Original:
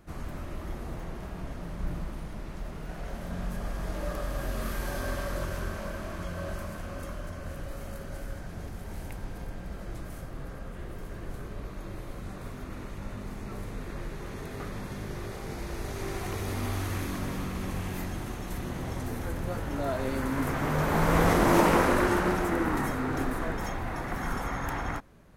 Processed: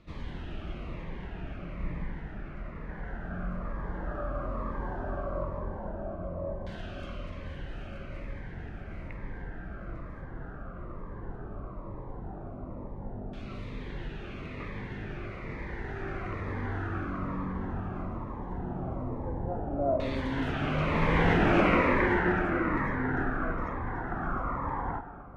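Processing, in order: reverse; upward compressor, threshold -40 dBFS; reverse; LFO low-pass saw down 0.15 Hz 680–3500 Hz; spring tank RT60 2.2 s, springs 39/48 ms, chirp 35 ms, DRR 8.5 dB; Shepard-style phaser falling 1.1 Hz; trim -1.5 dB

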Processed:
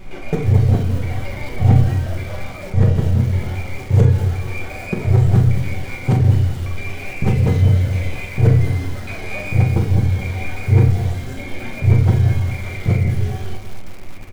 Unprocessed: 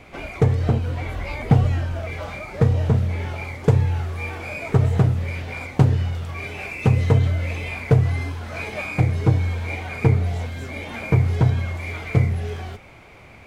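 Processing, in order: time reversed locally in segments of 108 ms; peaking EQ 1.1 kHz -4.5 dB 1.1 oct; band-stop 2.6 kHz, Q 15; tempo 0.94×; added noise brown -39 dBFS; feedback comb 190 Hz, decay 1 s, mix 60%; early reflections 30 ms -18 dB, 41 ms -8.5 dB, 66 ms -16 dB; on a send at -2.5 dB: reverberation RT60 0.50 s, pre-delay 5 ms; on the sum: bit-crushed delay 214 ms, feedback 35%, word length 6-bit, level -12.5 dB; trim +6.5 dB

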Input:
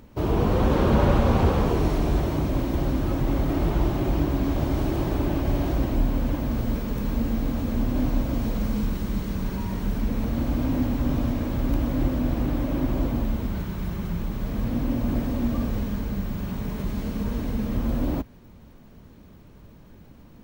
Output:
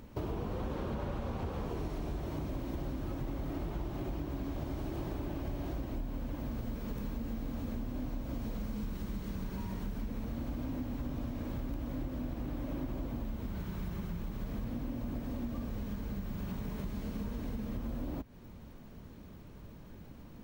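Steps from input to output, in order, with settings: compression, threshold -33 dBFS, peak gain reduction 17 dB; trim -2 dB

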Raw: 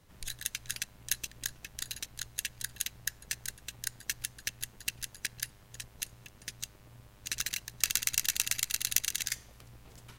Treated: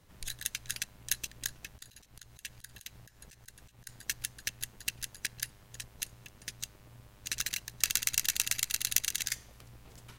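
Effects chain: 1.69–3.89 s: slow attack 155 ms

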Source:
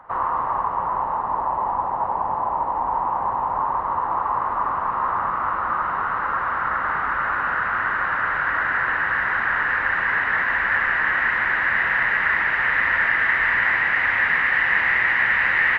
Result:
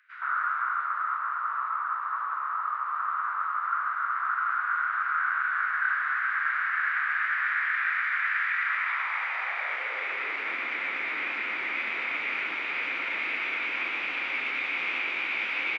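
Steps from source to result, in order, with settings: formant shift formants +4 st; high-pass sweep 1.5 kHz -> 290 Hz, 8.47–10.44 s; three bands offset in time highs, mids, lows 120/490 ms, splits 190/2200 Hz; trim -8.5 dB

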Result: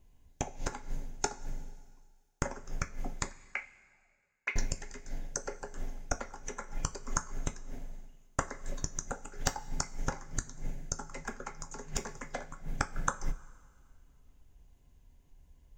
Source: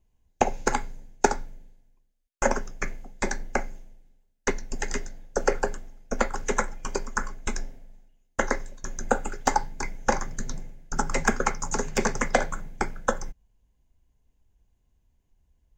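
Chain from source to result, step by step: 3.31–4.56 s: auto-wah 490–2400 Hz, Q 8.9, up, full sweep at -28 dBFS; inverted gate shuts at -21 dBFS, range -24 dB; two-slope reverb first 0.23 s, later 2 s, from -18 dB, DRR 8 dB; trim +6 dB

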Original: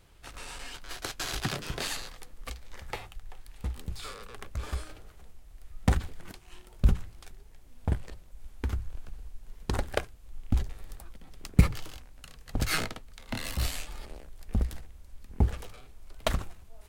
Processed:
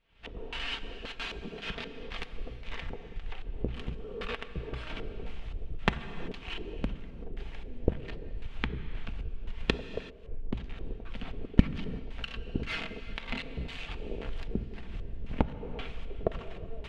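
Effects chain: comb filter that takes the minimum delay 4.4 ms; recorder AGC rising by 76 dB/s; LFO low-pass square 1.9 Hz 430–2900 Hz; gated-style reverb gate 410 ms flat, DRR 11.5 dB; trim -16.5 dB

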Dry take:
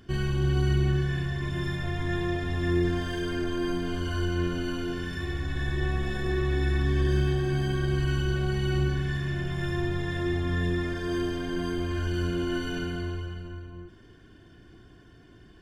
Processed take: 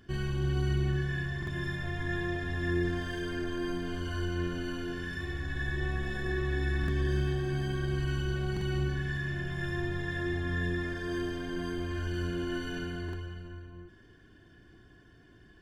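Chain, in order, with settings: small resonant body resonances 1.7 kHz, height 16 dB, ringing for 90 ms; buffer glitch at 1.38/6.79/8.52/13.04 s, samples 2048, times 1; trim -5 dB

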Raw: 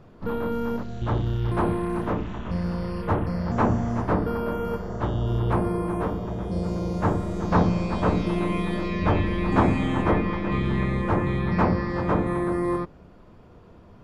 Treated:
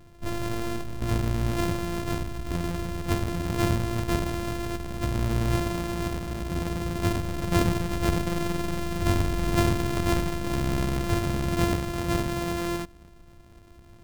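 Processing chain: sorted samples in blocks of 128 samples; bass shelf 170 Hz +9 dB; trim -6 dB

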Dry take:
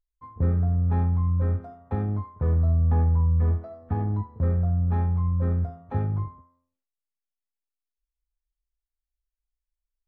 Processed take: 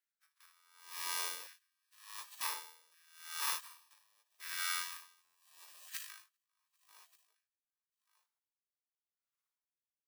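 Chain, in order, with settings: bit-reversed sample order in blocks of 64 samples; 5.21–6.10 s: peaking EQ 100 Hz -7.5 dB 0.73 oct; feedback delay 395 ms, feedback 53%, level -14.5 dB; spectral gate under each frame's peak -30 dB weak; frequency shift +27 Hz; LFO high-pass saw down 0.68 Hz 630–1700 Hz; buffer glitch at 5.24 s, samples 512, times 8; logarithmic tremolo 0.85 Hz, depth 36 dB; trim +2.5 dB

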